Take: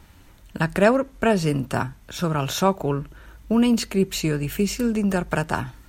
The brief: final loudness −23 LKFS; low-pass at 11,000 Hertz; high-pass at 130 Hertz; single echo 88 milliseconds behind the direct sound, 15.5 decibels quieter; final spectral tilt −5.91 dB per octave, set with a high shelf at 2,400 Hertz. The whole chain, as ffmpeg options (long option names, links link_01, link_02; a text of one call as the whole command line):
ffmpeg -i in.wav -af "highpass=130,lowpass=11000,highshelf=frequency=2400:gain=-6.5,aecho=1:1:88:0.168,volume=0.5dB" out.wav